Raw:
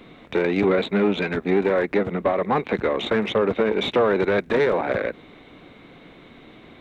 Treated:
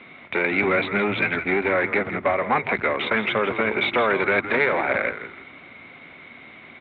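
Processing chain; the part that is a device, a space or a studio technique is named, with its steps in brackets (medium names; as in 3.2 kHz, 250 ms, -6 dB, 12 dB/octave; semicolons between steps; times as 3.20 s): frequency-shifting delay pedal into a guitar cabinet (frequency-shifting echo 164 ms, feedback 33%, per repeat -91 Hz, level -10.5 dB; cabinet simulation 110–3600 Hz, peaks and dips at 130 Hz -6 dB, 190 Hz -7 dB, 310 Hz -7 dB, 460 Hz -7 dB, 1.4 kHz +4 dB, 2.2 kHz +10 dB); trim +1 dB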